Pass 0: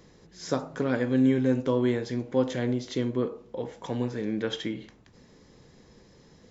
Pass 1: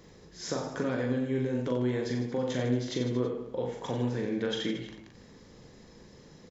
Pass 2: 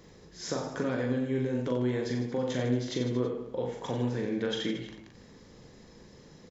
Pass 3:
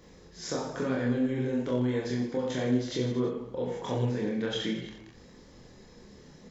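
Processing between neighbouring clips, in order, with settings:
brickwall limiter −18 dBFS, peak gain reduction 6.5 dB; downward compressor 2 to 1, threshold −30 dBFS, peak gain reduction 5 dB; on a send: reverse bouncing-ball delay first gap 40 ms, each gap 1.25×, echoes 5
no processing that can be heard
multi-voice chorus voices 4, 0.96 Hz, delay 26 ms, depth 3 ms; level +3.5 dB

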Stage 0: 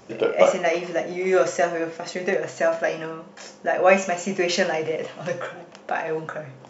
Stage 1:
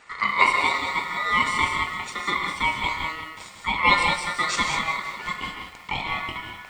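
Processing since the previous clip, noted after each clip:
reverb whose tail is shaped and stops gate 220 ms rising, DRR 3.5 dB
ring modulation 1,600 Hz
feedback echo at a low word length 185 ms, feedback 55%, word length 7 bits, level −14.5 dB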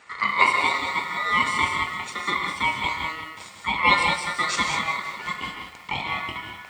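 high-pass filter 62 Hz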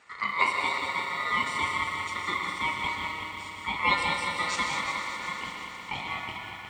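echo machine with several playback heads 120 ms, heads all three, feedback 70%, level −13.5 dB
level −6.5 dB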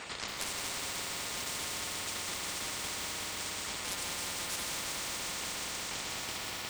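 soft clipping −18 dBFS, distortion −17 dB
every bin compressed towards the loudest bin 10 to 1
level −3 dB

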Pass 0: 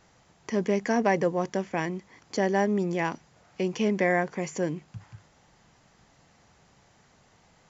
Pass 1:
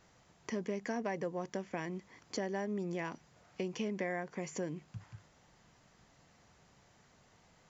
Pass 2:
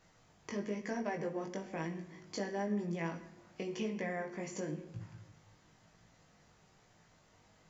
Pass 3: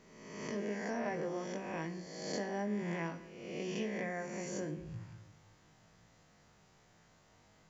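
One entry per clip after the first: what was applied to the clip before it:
notch filter 820 Hz, Q 20; downward compressor 3 to 1, threshold −31 dBFS, peak gain reduction 10 dB; level −4.5 dB
rectangular room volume 410 cubic metres, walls mixed, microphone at 0.55 metres; chorus effect 1 Hz, delay 18 ms, depth 2.3 ms; level +1.5 dB
peak hold with a rise ahead of every peak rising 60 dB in 1.20 s; level −2.5 dB

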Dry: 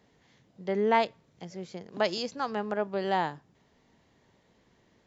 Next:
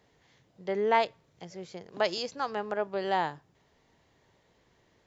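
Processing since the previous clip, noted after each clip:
parametric band 220 Hz −7 dB 0.75 octaves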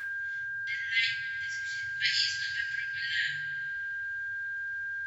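steady tone 1,600 Hz −36 dBFS
brick-wall band-stop 140–1,600 Hz
coupled-rooms reverb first 0.38 s, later 2.1 s, from −18 dB, DRR −7.5 dB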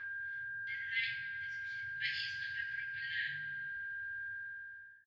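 fade-out on the ending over 0.80 s
high-frequency loss of the air 280 metres
echo with shifted repeats 94 ms, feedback 37%, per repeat +61 Hz, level −16 dB
level −5 dB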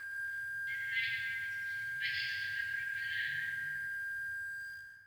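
in parallel at −8.5 dB: bit reduction 8 bits
on the sum: dense smooth reverb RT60 2.6 s, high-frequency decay 0.35×, pre-delay 80 ms, DRR 1 dB
level −3 dB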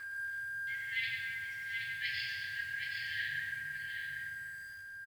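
single-tap delay 774 ms −6 dB

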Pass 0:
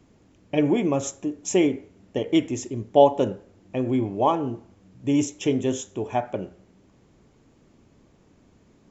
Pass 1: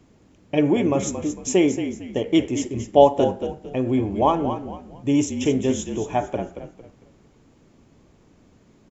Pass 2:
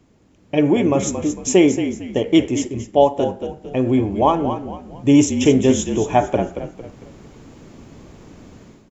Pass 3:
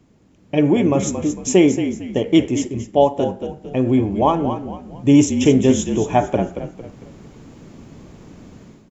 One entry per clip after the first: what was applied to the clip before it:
echo with shifted repeats 226 ms, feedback 33%, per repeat −43 Hz, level −9.5 dB; level +2 dB
automatic gain control gain up to 14 dB; level −1 dB
parametric band 170 Hz +4 dB 1.2 octaves; level −1 dB

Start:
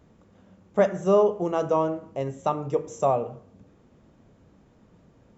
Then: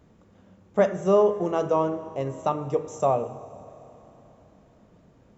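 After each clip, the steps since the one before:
four-comb reverb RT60 3.7 s, combs from 30 ms, DRR 15 dB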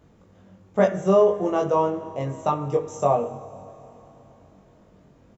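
double-tracking delay 21 ms −2 dB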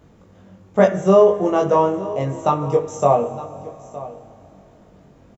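single-tap delay 914 ms −17 dB
level +5 dB

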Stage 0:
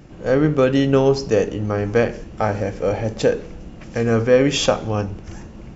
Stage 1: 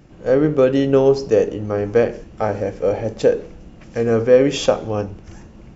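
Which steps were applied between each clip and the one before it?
dynamic equaliser 450 Hz, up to +7 dB, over −29 dBFS, Q 0.92
level −4 dB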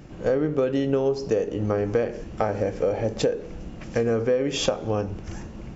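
downward compressor 6 to 1, threshold −24 dBFS, peak gain reduction 16 dB
level +3.5 dB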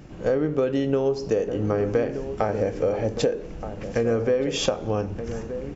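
slap from a distant wall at 210 metres, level −10 dB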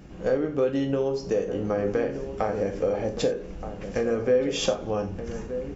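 reverb whose tail is shaped and stops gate 110 ms falling, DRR 5 dB
level −3 dB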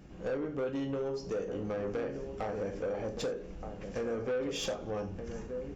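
soft clipping −22 dBFS, distortion −12 dB
level −6.5 dB

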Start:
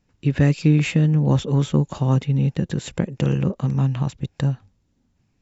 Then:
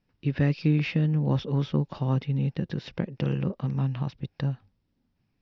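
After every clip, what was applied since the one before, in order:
elliptic low-pass filter 5,300 Hz, stop band 40 dB
parametric band 70 Hz −6 dB 0.61 octaves
level −5.5 dB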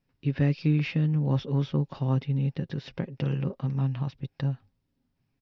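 comb filter 7.4 ms, depth 34%
level −2.5 dB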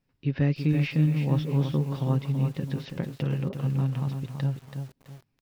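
feedback echo at a low word length 330 ms, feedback 35%, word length 8 bits, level −7 dB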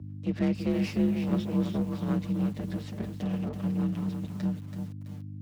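lower of the sound and its delayed copy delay 7.2 ms
mains hum 50 Hz, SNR 10 dB
frequency shifter +51 Hz
level −2.5 dB

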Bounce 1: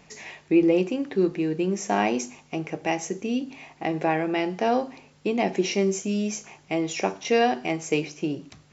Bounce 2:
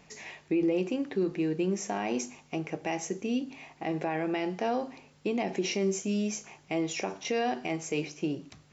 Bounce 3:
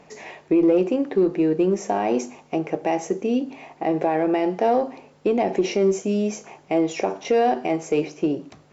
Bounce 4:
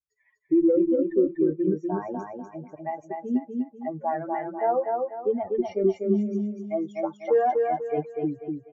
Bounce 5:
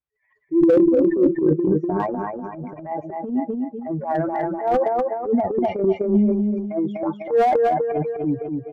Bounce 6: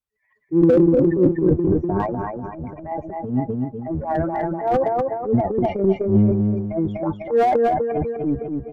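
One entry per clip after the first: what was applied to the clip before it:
brickwall limiter −16.5 dBFS, peak gain reduction 8 dB; level −3.5 dB
parametric band 540 Hz +12.5 dB 2.8 octaves; in parallel at −9 dB: asymmetric clip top −17 dBFS; on the sum: level −3 dB
spectral dynamics exaggerated over time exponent 3; Savitzky-Golay smoothing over 41 samples; repeating echo 246 ms, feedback 35%, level −3.5 dB; level +1 dB
transient designer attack −11 dB, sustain +9 dB; high-frequency loss of the air 440 metres; slew-rate limiting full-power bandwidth 61 Hz; level +7 dB
sub-octave generator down 1 octave, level −3 dB

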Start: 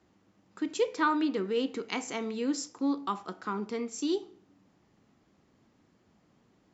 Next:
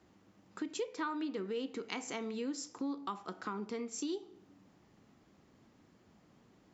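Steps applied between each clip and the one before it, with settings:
downward compressor 3 to 1, threshold −40 dBFS, peak gain reduction 13.5 dB
level +1.5 dB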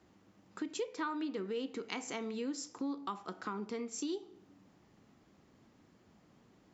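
no processing that can be heard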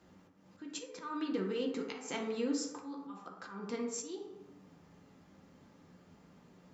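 volume swells 212 ms
convolution reverb RT60 0.95 s, pre-delay 3 ms, DRR 0 dB
level +1 dB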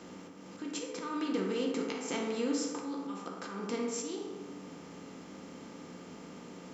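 compressor on every frequency bin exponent 0.6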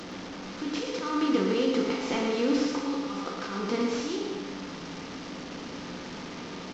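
linear delta modulator 32 kbit/s, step −41 dBFS
single-tap delay 115 ms −6.5 dB
level +6.5 dB

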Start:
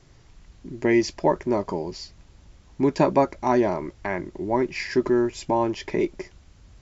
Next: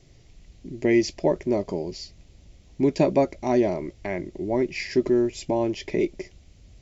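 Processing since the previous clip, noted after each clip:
flat-topped bell 1,200 Hz −10.5 dB 1.2 octaves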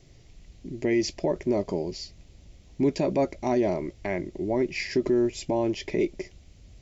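brickwall limiter −15 dBFS, peak gain reduction 8 dB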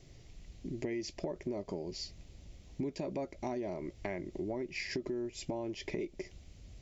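downward compressor 6 to 1, threshold −33 dBFS, peak gain reduction 13.5 dB
level −2 dB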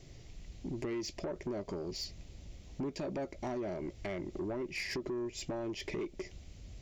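soft clipping −34.5 dBFS, distortion −13 dB
level +3 dB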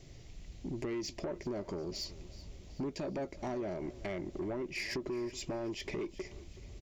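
repeating echo 375 ms, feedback 47%, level −18 dB

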